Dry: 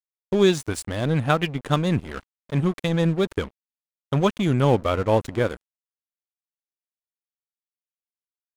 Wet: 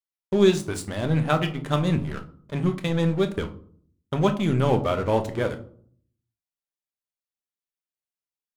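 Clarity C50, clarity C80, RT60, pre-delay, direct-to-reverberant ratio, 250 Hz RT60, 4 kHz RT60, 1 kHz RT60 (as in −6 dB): 13.5 dB, 18.0 dB, 0.55 s, 5 ms, 5.5 dB, 0.80 s, 0.30 s, 0.50 s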